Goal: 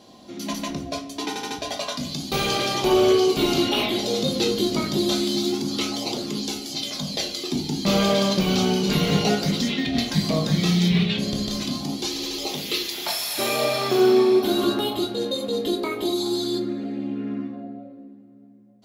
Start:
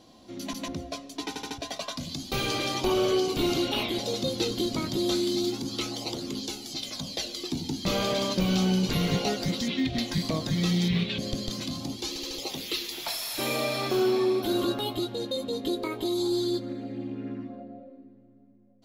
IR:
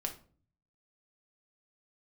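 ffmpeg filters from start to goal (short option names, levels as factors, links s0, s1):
-filter_complex "[1:a]atrim=start_sample=2205[s0];[0:a][s0]afir=irnorm=-1:irlink=0,volume=5.96,asoftclip=hard,volume=0.168,highpass=f=100:p=1,volume=1.88"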